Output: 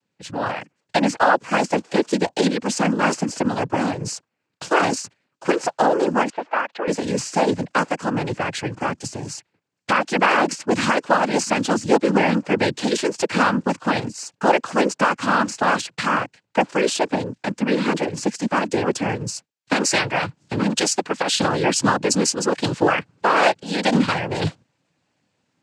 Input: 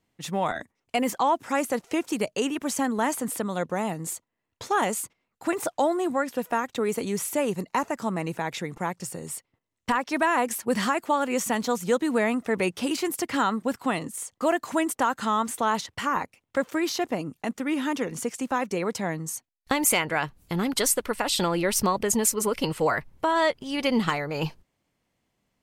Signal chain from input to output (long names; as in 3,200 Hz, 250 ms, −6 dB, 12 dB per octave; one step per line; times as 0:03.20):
automatic gain control gain up to 8 dB
cochlear-implant simulation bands 8
0:06.30–0:06.88: band-pass filter 590–2,500 Hz
level −1 dB